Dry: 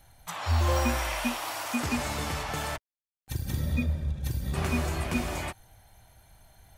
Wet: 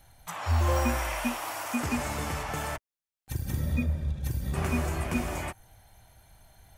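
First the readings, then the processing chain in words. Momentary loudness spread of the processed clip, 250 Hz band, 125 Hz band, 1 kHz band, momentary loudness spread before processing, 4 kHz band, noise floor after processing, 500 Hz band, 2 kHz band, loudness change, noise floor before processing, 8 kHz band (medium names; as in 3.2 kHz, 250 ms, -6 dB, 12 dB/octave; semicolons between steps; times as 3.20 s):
10 LU, 0.0 dB, 0.0 dB, 0.0 dB, 10 LU, -4.5 dB, under -85 dBFS, 0.0 dB, -1.0 dB, -0.5 dB, under -85 dBFS, -1.0 dB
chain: dynamic bell 4 kHz, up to -7 dB, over -55 dBFS, Q 1.7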